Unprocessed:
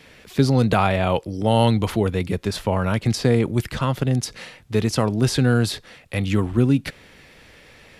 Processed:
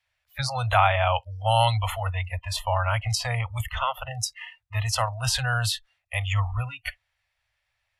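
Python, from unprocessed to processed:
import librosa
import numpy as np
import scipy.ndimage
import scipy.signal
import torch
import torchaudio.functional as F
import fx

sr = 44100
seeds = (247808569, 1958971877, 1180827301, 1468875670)

y = fx.noise_reduce_blind(x, sr, reduce_db=29)
y = scipy.signal.sosfilt(scipy.signal.cheby2(4, 40, [170.0, 430.0], 'bandstop', fs=sr, output='sos'), y)
y = F.gain(torch.from_numpy(y), 1.5).numpy()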